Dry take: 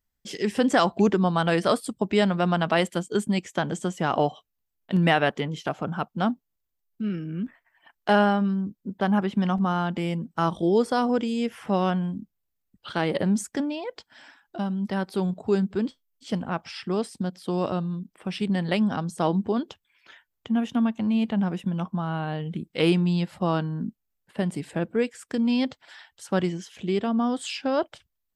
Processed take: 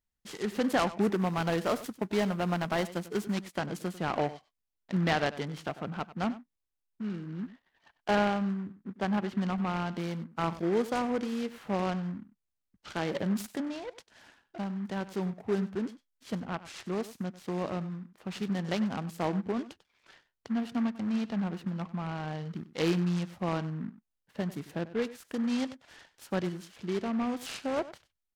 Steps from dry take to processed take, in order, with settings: 1.02–3.33 CVSD 64 kbps; echo 96 ms -16 dB; noise-modulated delay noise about 1200 Hz, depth 0.05 ms; gain -7 dB

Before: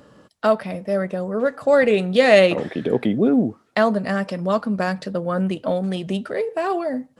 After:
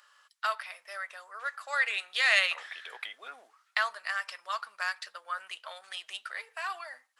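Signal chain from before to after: HPF 1200 Hz 24 dB/oct; gain -2.5 dB

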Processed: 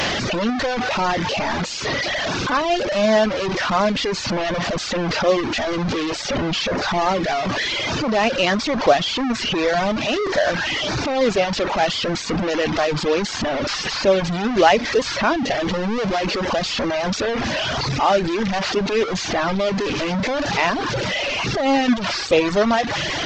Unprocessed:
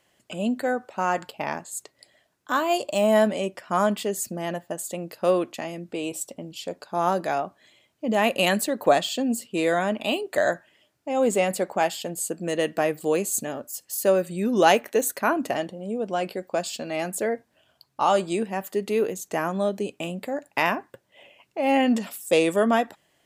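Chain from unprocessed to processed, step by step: delta modulation 32 kbps, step -18 dBFS; tone controls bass +1 dB, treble -3 dB; reverb removal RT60 1.1 s; gain +4 dB

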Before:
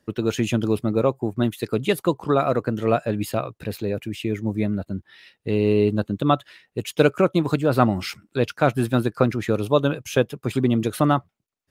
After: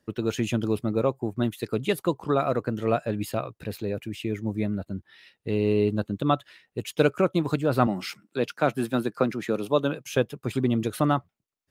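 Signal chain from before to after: 7.87–10.09 HPF 150 Hz 24 dB/oct; gain -4 dB

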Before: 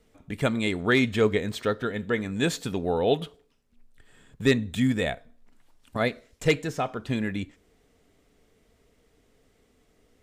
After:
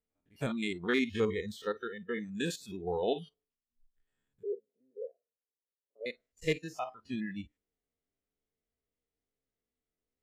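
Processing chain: stepped spectrum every 50 ms; 4.43–6.06 Butterworth band-pass 470 Hz, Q 2.7; spectral noise reduction 21 dB; gain -6.5 dB

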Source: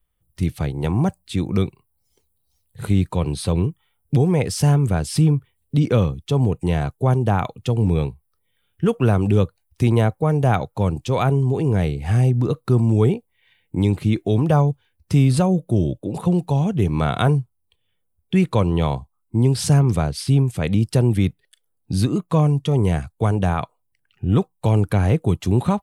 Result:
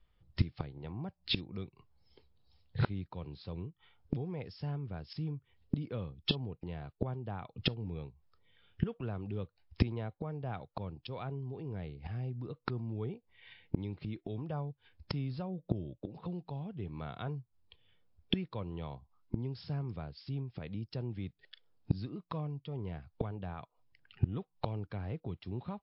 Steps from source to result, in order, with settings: flipped gate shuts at -20 dBFS, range -25 dB; gain +3.5 dB; MP3 40 kbps 12000 Hz

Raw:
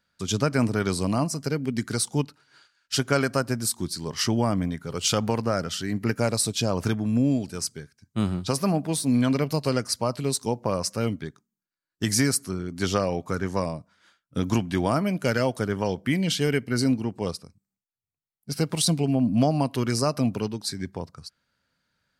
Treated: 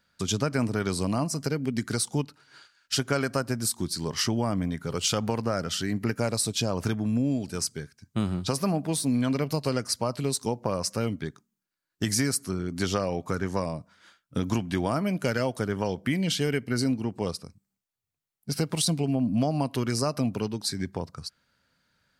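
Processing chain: compressor 2:1, threshold -32 dBFS, peak gain reduction 9 dB; gain +4 dB

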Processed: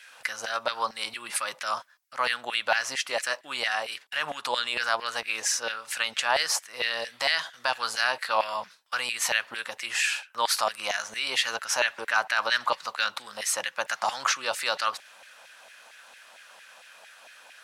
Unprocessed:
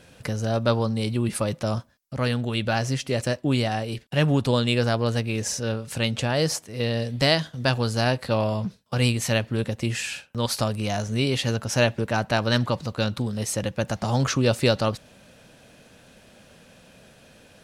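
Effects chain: notch 420 Hz, Q 12; limiter -15.5 dBFS, peak gain reduction 8.5 dB; LFO high-pass saw down 4.4 Hz 790–2000 Hz; gain +2 dB

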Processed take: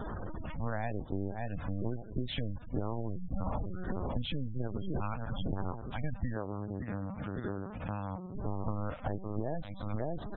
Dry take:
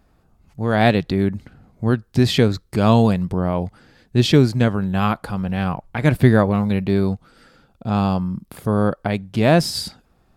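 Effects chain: zero-crossing step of -18 dBFS; gate -17 dBFS, range -11 dB; feedback echo 0.562 s, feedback 40%, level -10 dB; vocal rider within 4 dB 0.5 s; LPC vocoder at 8 kHz pitch kept; LFO notch square 1.1 Hz 380–2400 Hz; compressor 10:1, threshold -30 dBFS, peak gain reduction 22.5 dB; 6.34–8.35 HPF 99 Hz 6 dB/oct; spectral gate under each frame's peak -25 dB strong

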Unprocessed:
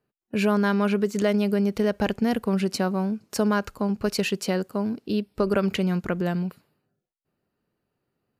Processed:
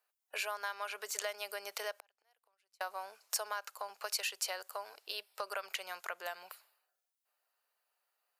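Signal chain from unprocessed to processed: 1.95–2.81 flipped gate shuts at -20 dBFS, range -42 dB; inverse Chebyshev high-pass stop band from 260 Hz, stop band 50 dB; compressor 3:1, threshold -38 dBFS, peak gain reduction 12 dB; high shelf 5600 Hz +9.5 dB; gain -1 dB

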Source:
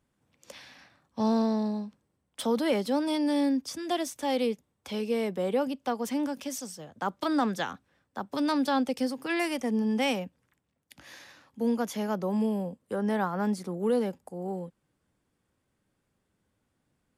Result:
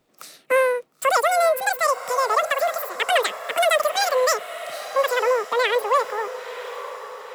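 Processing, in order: speed mistake 33 rpm record played at 78 rpm; diffused feedback echo 0.96 s, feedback 50%, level -13 dB; gain +8 dB

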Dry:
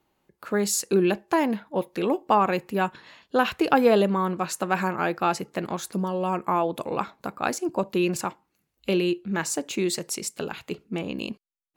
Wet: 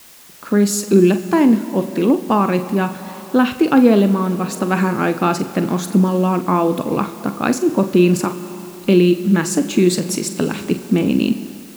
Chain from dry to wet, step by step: graphic EQ 125/250/1000 Hz +5/+11/+4 dB; on a send: flutter echo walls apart 7.6 m, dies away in 0.22 s; on the sum: Schroeder reverb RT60 3.1 s, combs from 30 ms, DRR 13 dB; AGC gain up to 7 dB; dynamic EQ 840 Hz, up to -6 dB, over -31 dBFS, Q 1.5; in parallel at -4 dB: requantised 6-bit, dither triangular; on the sum: gain -3.5 dB

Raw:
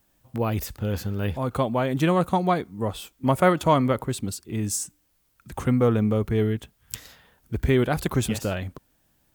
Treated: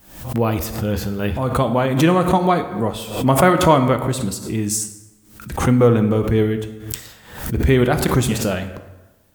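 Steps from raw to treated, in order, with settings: plate-style reverb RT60 1.1 s, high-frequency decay 0.65×, DRR 7.5 dB; backwards sustainer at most 91 dB/s; gain +5.5 dB

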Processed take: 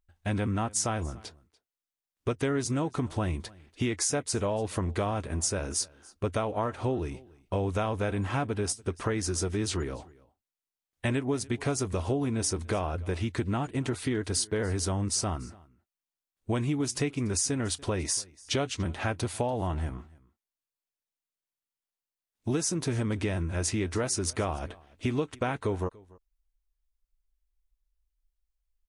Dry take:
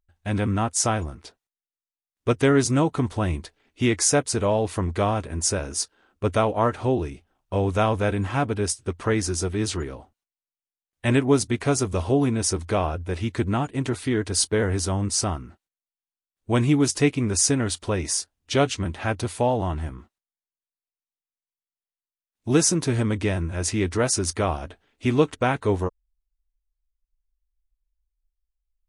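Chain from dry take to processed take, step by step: compressor, threshold -26 dBFS, peak gain reduction 13 dB; on a send: echo 0.289 s -23.5 dB

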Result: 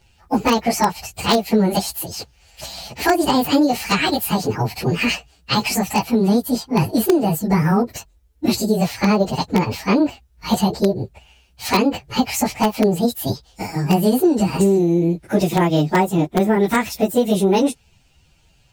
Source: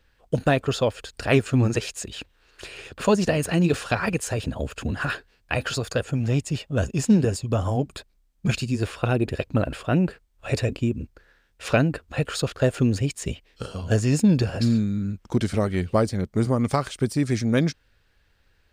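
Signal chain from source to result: pitch shift by moving bins +9 st; notch 1100 Hz, Q 9.6; compressor 16:1, threshold -23 dBFS, peak gain reduction 10 dB; in parallel at -7 dB: wrapped overs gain 17 dB; on the sum: gain +8.5 dB

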